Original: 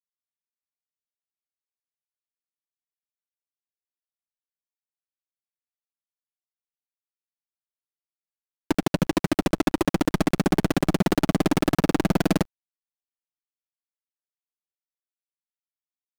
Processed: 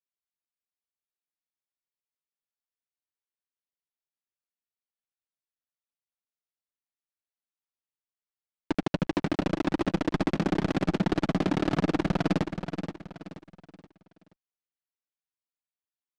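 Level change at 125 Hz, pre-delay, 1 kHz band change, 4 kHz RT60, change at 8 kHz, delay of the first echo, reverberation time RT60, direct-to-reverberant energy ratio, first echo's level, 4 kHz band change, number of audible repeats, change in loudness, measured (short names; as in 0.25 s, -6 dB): -4.0 dB, none, -4.5 dB, none, -13.0 dB, 0.477 s, none, none, -8.0 dB, -6.0 dB, 4, -4.5 dB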